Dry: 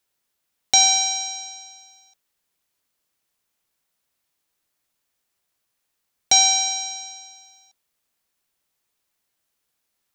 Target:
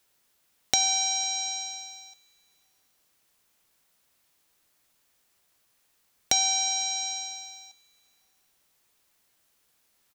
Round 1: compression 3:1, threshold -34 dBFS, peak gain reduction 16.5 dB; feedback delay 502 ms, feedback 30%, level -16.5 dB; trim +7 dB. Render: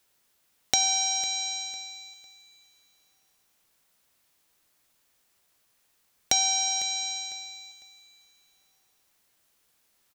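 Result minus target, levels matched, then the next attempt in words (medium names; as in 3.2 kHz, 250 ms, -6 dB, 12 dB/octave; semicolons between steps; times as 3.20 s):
echo-to-direct +11 dB
compression 3:1, threshold -34 dBFS, peak gain reduction 16.5 dB; feedback delay 502 ms, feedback 30%, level -27.5 dB; trim +7 dB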